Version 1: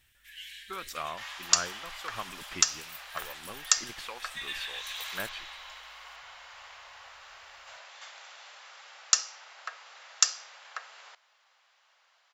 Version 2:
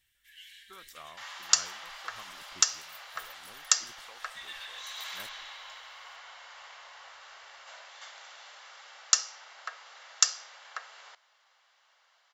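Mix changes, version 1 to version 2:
speech -12.0 dB; first sound -6.0 dB; master: add band-stop 2.5 kHz, Q 14

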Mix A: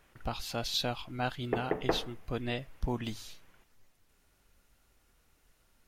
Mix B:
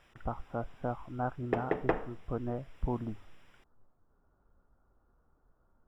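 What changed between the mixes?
speech: add steep low-pass 1.4 kHz 48 dB/octave; background: remove distance through air 220 m

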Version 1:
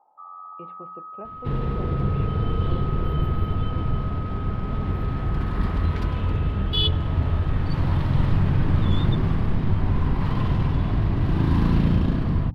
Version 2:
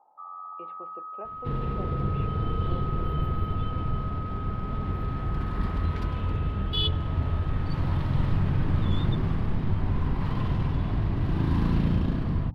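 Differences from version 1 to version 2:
speech: add high-pass 360 Hz 12 dB/octave; second sound -4.5 dB

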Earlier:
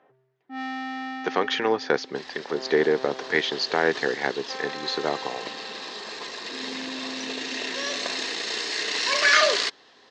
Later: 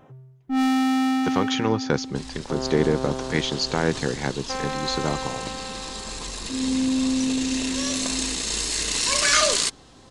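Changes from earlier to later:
first sound +9.0 dB; master: remove cabinet simulation 360–5100 Hz, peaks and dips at 420 Hz +5 dB, 710 Hz +4 dB, 1.8 kHz +8 dB

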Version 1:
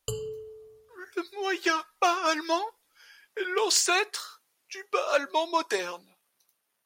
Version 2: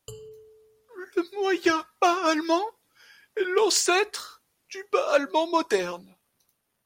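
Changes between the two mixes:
speech: remove high-pass 730 Hz 6 dB/octave; background -8.5 dB

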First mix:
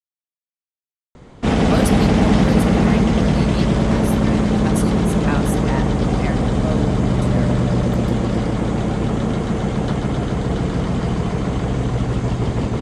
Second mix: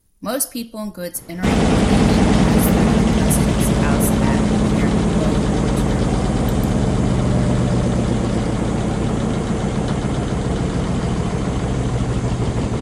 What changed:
speech: entry -1.45 s; master: remove distance through air 61 m

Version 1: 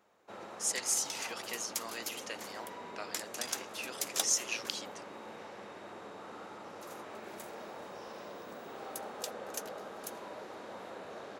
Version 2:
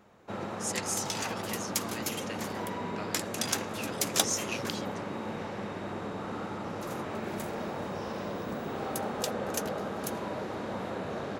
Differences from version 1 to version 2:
background +8.0 dB; master: add tone controls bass +14 dB, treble -3 dB

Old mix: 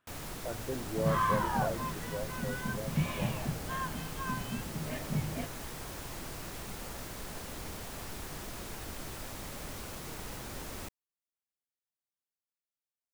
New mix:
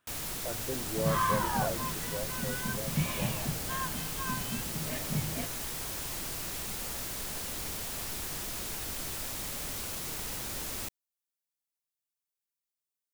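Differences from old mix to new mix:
first sound: add peaking EQ 3.1 kHz +3 dB 1.7 oct; master: add treble shelf 4.7 kHz +10.5 dB

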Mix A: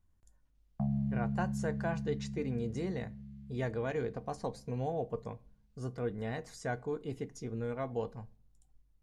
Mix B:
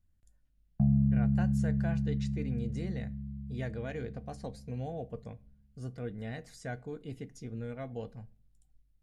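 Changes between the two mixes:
background: add tilt EQ -3 dB/octave; master: add fifteen-band graphic EQ 400 Hz -6 dB, 1 kHz -12 dB, 6.3 kHz -4 dB

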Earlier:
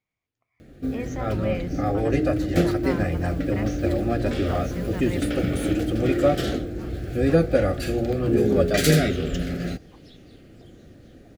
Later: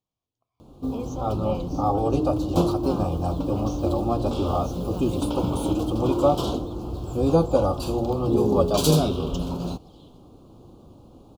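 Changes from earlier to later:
first sound: remove Butterworth band-stop 970 Hz, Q 1.6; second sound: entry -1.80 s; master: add Chebyshev band-stop 1.1–3.2 kHz, order 2

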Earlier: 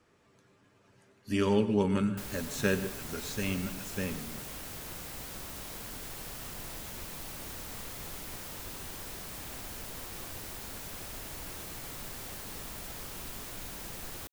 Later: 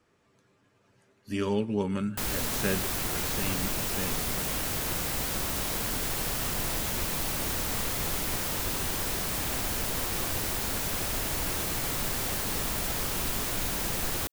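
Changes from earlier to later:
speech: send -11.5 dB; background +11.5 dB

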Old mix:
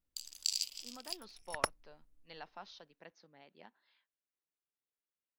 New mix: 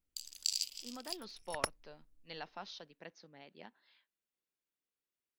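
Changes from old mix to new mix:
speech +6.0 dB; master: add peaking EQ 1 kHz -4 dB 1.8 oct

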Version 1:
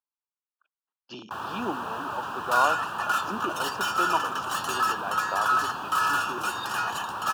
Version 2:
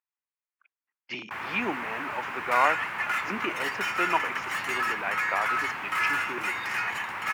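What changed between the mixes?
first sound -4.0 dB; second sound -7.5 dB; master: remove Butterworth band-stop 2.1 kHz, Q 1.3

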